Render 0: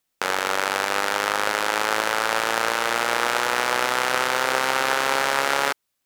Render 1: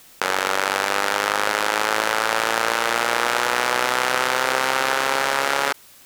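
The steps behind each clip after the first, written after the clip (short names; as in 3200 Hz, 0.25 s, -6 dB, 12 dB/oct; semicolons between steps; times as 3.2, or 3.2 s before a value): fast leveller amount 50%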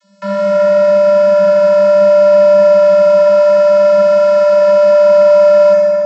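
vocoder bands 32, square 197 Hz; reverb RT60 3.0 s, pre-delay 5 ms, DRR -9 dB; gain -4.5 dB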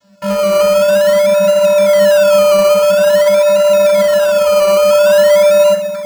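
reverb removal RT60 1 s; in parallel at -4 dB: decimation with a swept rate 19×, swing 60% 0.48 Hz; on the sum: gain -1 dB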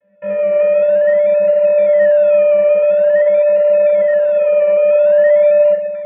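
vocal tract filter e; gain +5.5 dB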